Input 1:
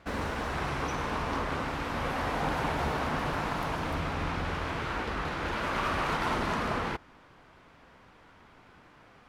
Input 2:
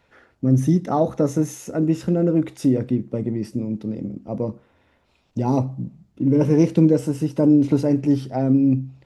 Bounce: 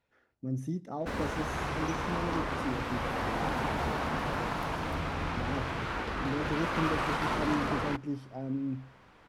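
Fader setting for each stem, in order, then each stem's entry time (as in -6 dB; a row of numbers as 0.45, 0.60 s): -1.5, -17.0 dB; 1.00, 0.00 s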